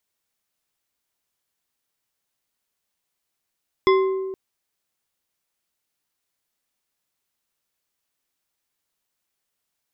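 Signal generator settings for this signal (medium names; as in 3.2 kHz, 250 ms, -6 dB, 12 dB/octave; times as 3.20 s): glass hit bar, length 0.47 s, lowest mode 382 Hz, decay 1.72 s, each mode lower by 5 dB, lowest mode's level -12.5 dB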